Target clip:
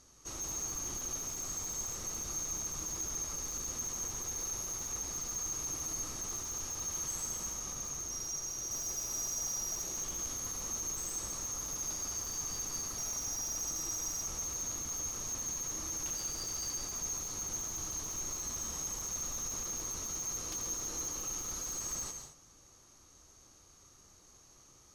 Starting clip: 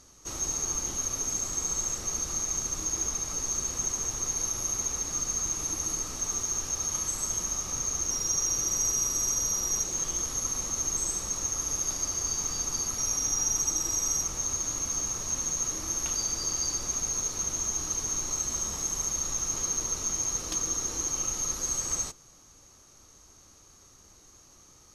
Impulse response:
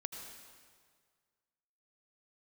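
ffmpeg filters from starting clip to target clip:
-filter_complex "[0:a]asettb=1/sr,asplit=3[a][b][c];[a]atrim=end=7.494[d];[b]atrim=start=7.49:end=8.71,asetpts=PTS-STARTPTS,afade=t=in:d=0.004:c=qsin,afade=t=out:st=1.216:d=0.004:c=qsin,acompressor=threshold=-30dB:ratio=4[e];[c]atrim=start=8.706[f];[d][e]acrossfade=d=0.004:c1=hsin:c2=qsin[g];[g][f]acrossfade=d=0.004:c1=qsin:c2=hsin,volume=30.5dB,asoftclip=hard,volume=-30.5dB[h];[1:a]atrim=start_sample=2205,afade=t=out:st=0.22:d=0.01,atrim=end_sample=10143,asetrate=33075,aresample=44100[i];[h][i]afir=irnorm=-1:irlink=0,volume=-4dB"

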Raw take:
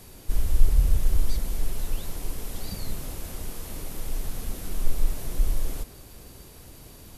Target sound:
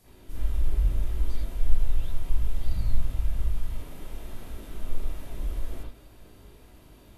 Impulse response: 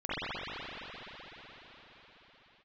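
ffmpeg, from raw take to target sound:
-filter_complex "[0:a]asplit=3[a][b][c];[a]afade=t=out:st=1.55:d=0.02[d];[b]asubboost=boost=8:cutoff=120,afade=t=in:st=1.55:d=0.02,afade=t=out:st=3.73:d=0.02[e];[c]afade=t=in:st=3.73:d=0.02[f];[d][e][f]amix=inputs=3:normalize=0[g];[1:a]atrim=start_sample=2205,atrim=end_sample=3969,asetrate=48510,aresample=44100[h];[g][h]afir=irnorm=-1:irlink=0,volume=-8dB"

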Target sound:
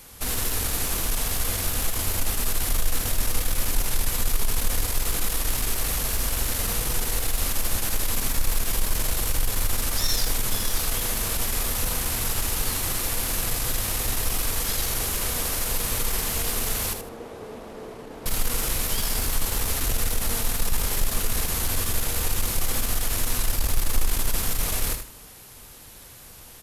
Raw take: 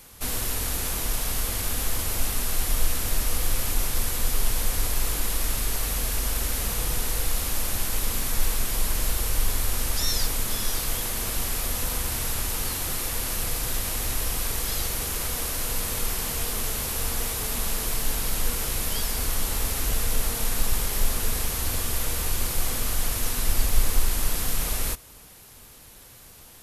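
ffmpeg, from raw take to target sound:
-filter_complex "[0:a]asplit=2[a][b];[b]asoftclip=type=hard:threshold=-23.5dB,volume=-4dB[c];[a][c]amix=inputs=2:normalize=0,asettb=1/sr,asplit=3[d][e][f];[d]atrim=end=16.934[g];[e]atrim=start=16.93:end=18.26,asetpts=PTS-STARTPTS,afade=t=in:d=0.004:c=qsin,afade=t=out:st=1.326:d=0.004:c=qsin,bandpass=f=420:t=q:w=1.2:csg=0[h];[f]atrim=start=18.256[i];[g][h]acrossfade=d=0.004:c1=hsin:c2=qsin[j];[j][i]acrossfade=d=0.004:c1=qsin:c2=hsin,aeval=exprs='0.531*(cos(1*acos(clip(val(0)/0.531,-1,1)))-cos(1*PI/2))+0.0335*(cos(5*acos(clip(val(0)/0.531,-1,1)))-cos(5*PI/2))+0.0335*(cos(6*acos(clip(val(0)/0.531,-1,1)))-cos(6*PI/2))':c=same,aecho=1:1:78|156|234:0.398|0.0995|0.0249,volume=-4.5dB"

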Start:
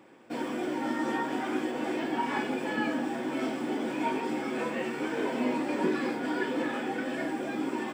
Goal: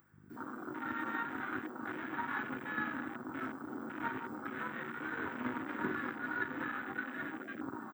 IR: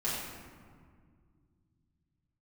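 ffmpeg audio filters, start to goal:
-filter_complex "[0:a]bandreject=f=60:t=h:w=6,bandreject=f=120:t=h:w=6,bandreject=f=180:t=h:w=6,bandreject=f=240:t=h:w=6,bandreject=f=300:t=h:w=6,bandreject=f=360:t=h:w=6,bandreject=f=420:t=h:w=6,bandreject=f=480:t=h:w=6,aeval=exprs='0.15*(cos(1*acos(clip(val(0)/0.15,-1,1)))-cos(1*PI/2))+0.0266*(cos(3*acos(clip(val(0)/0.15,-1,1)))-cos(3*PI/2))+0.0119*(cos(4*acos(clip(val(0)/0.15,-1,1)))-cos(4*PI/2))':c=same,firequalizer=gain_entry='entry(110,0);entry(170,-8);entry(580,-23);entry(1400,-1);entry(2500,-21);entry(11000,-8);entry(16000,12)':delay=0.05:min_phase=1,acrossover=split=240[a][b];[b]acompressor=threshold=-42dB:ratio=3[c];[a][c]amix=inputs=2:normalize=0,bass=f=250:g=-6,treble=f=4k:g=5,aeval=exprs='val(0)+0.000398*(sin(2*PI*50*n/s)+sin(2*PI*2*50*n/s)/2+sin(2*PI*3*50*n/s)/3+sin(2*PI*4*50*n/s)/4+sin(2*PI*5*50*n/s)/5)':c=same,acrossover=split=100[d][e];[d]acrusher=bits=3:mix=0:aa=0.5[f];[f][e]amix=inputs=2:normalize=0,acompressor=mode=upward:threshold=-53dB:ratio=2.5,afwtdn=0.00316,volume=10dB"

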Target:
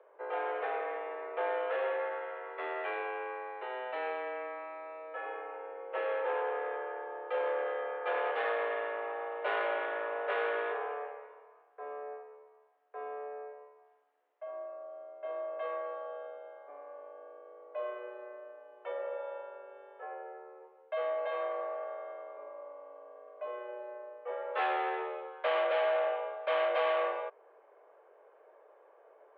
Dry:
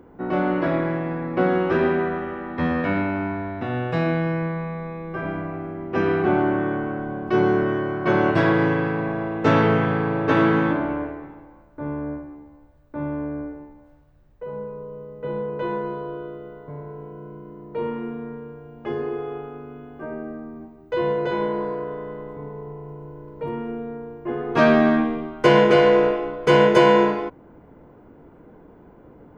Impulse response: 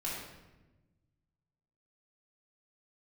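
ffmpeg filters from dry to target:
-af "asoftclip=type=tanh:threshold=-16.5dB,highpass=f=320:t=q:w=0.5412,highpass=f=320:t=q:w=1.307,lowpass=f=3.3k:t=q:w=0.5176,lowpass=f=3.3k:t=q:w=0.7071,lowpass=f=3.3k:t=q:w=1.932,afreqshift=140,volume=-9dB"

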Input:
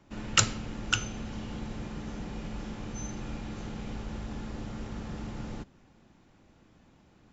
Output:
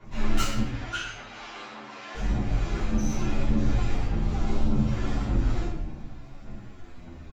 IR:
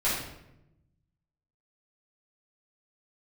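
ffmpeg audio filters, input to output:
-filter_complex "[0:a]asplit=2[a][b];[b]adelay=24,volume=-11dB[c];[a][c]amix=inputs=2:normalize=0,aphaser=in_gain=1:out_gain=1:delay=3:decay=0.74:speed=1.7:type=sinusoidal,acompressor=threshold=-28dB:ratio=6,asoftclip=type=tanh:threshold=-29dB,asettb=1/sr,asplit=3[d][e][f];[d]atrim=end=0.584[g];[e]atrim=start=0.58:end=2.15,asetpts=PTS-STARTPTS,afade=t=in:d=0.004:c=qsin,afade=t=out:st=1.566:d=0.004:c=qsin,highpass=800,lowpass=5.2k[h];[f]atrim=start=2.146[i];[g][h]acrossfade=d=0.004:c1=hsin:c2=qsin[j];[j][i]acrossfade=d=0.004:c1=qsin:c2=hsin,asettb=1/sr,asplit=3[k][l][m];[k]atrim=end=4.224[n];[l]atrim=start=4.22:end=4.92,asetpts=PTS-STARTPTS,afade=t=in:d=0.004:c=qsin,afade=t=out:st=0.696:d=0.004:c=qsin,equalizer=f=1.8k:t=o:w=0.33:g=-6.5[o];[m]atrim=start=4.916[p];[n][o]acrossfade=d=0.004:c1=hsin:c2=qsin[q];[q][p]acrossfade=d=0.004:c1=qsin:c2=hsin[r];[1:a]atrim=start_sample=2205[s];[r][s]afir=irnorm=-1:irlink=0,asplit=2[t][u];[u]adelay=9.6,afreqshift=-0.69[v];[t][v]amix=inputs=2:normalize=1"

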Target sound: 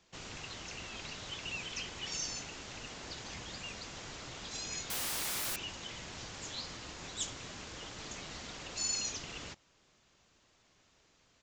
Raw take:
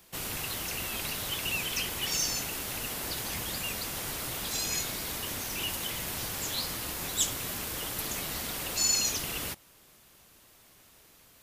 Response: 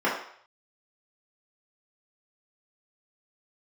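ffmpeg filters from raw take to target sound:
-filter_complex "[0:a]aresample=16000,aresample=44100,asettb=1/sr,asplit=3[a][b][c];[a]atrim=end=4.904[d];[b]atrim=start=4.9:end=5.56,asetpts=PTS-STARTPTS,afade=t=in:d=0.004:c=qsin,afade=t=out:st=0.656:d=0.004:c=qsin,aeval=exprs='0.0531*sin(PI/2*8.91*val(0)/0.0531)':c=same[e];[c]atrim=start=5.556[f];[d][e]acrossfade=d=0.004:c1=hsin:c2=qsin[g];[g][f]acrossfade=d=0.004:c1=qsin:c2=hsin,volume=-8dB"

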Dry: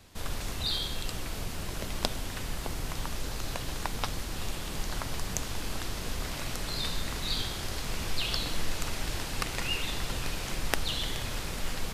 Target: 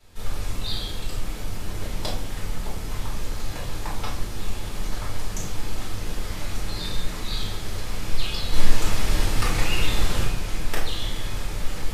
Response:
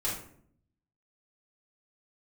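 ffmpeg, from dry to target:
-filter_complex "[0:a]asettb=1/sr,asplit=3[a][b][c];[a]atrim=end=8.524[d];[b]atrim=start=8.52:end=10.24,asetpts=PTS-STARTPTS,afade=t=in:d=0.004:c=qsin,afade=t=out:st=1.716:d=0.004:c=qsin,acontrast=48[e];[c]atrim=start=10.236[f];[d][e]acrossfade=d=0.004:c1=hsin:c2=qsin[g];[g][f]acrossfade=d=0.004:c1=qsin:c2=hsin[h];[1:a]atrim=start_sample=2205[i];[h][i]afir=irnorm=-1:irlink=0,volume=-4.5dB"

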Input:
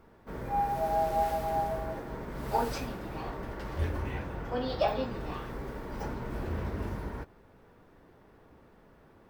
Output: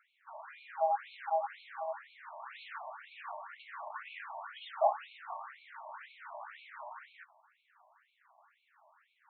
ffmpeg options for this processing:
-filter_complex "[0:a]asettb=1/sr,asplit=3[a][b][c];[a]atrim=end=3.494[d];[b]atrim=start=3.49:end=4.9,asetpts=PTS-STARTPTS,afade=t=in:d=0.004:c=qsin,afade=t=out:st=1.406:d=0.004:c=qsin,asplit=2[e][f];[f]highpass=f=720:p=1,volume=9dB,asoftclip=type=tanh:threshold=-16dB[g];[e][g]amix=inputs=2:normalize=0,lowpass=f=1.6k:p=1,volume=-6dB[h];[c]atrim=start=4.896[i];[d][h]acrossfade=d=0.004:c1=hsin:c2=qsin[j];[j][i]acrossfade=d=0.004:c1=qsin:c2=hsin,afftfilt=real='re*between(b*sr/1024,790*pow(3100/790,0.5+0.5*sin(2*PI*2*pts/sr))/1.41,790*pow(3100/790,0.5+0.5*sin(2*PI*2*pts/sr))*1.41)':imag='im*between(b*sr/1024,790*pow(3100/790,0.5+0.5*sin(2*PI*2*pts/sr))/1.41,790*pow(3100/790,0.5+0.5*sin(2*PI*2*pts/sr))*1.41)':win_size=1024:overlap=0.75,volume=2dB"

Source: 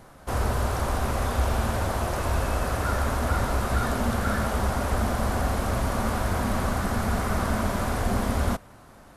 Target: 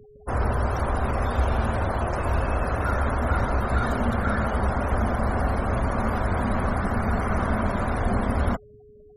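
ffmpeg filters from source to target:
-af "afftfilt=real='re*gte(hypot(re,im),0.0158)':imag='im*gte(hypot(re,im),0.0158)':win_size=1024:overlap=0.75,aeval=exprs='val(0)+0.00316*sin(2*PI*420*n/s)':c=same,volume=1.5dB"

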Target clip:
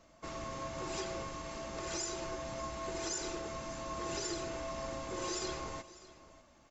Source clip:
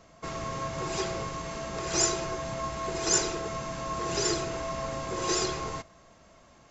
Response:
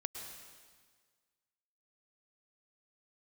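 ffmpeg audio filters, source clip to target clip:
-af "aecho=1:1:3.4:0.39,alimiter=limit=-21dB:level=0:latency=1:release=119,aecho=1:1:599:0.126,volume=-7dB"

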